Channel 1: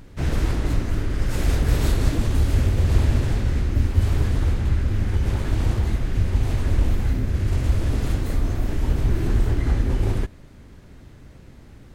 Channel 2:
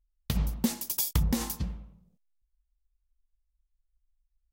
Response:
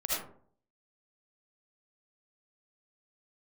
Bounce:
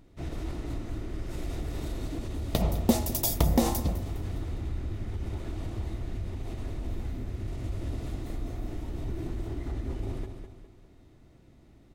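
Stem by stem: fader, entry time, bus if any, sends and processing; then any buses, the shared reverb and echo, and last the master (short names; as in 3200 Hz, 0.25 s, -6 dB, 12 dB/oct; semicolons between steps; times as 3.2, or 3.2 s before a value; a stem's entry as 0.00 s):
-13.5 dB, 0.00 s, no send, echo send -7.5 dB, limiter -13.5 dBFS, peak gain reduction 7.5 dB
+0.5 dB, 2.25 s, no send, echo send -17 dB, bell 610 Hz +12 dB 1.1 oct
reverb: off
echo: feedback echo 0.205 s, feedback 40%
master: notch 1600 Hz, Q 9.5; small resonant body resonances 330/670/3700 Hz, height 7 dB, ringing for 25 ms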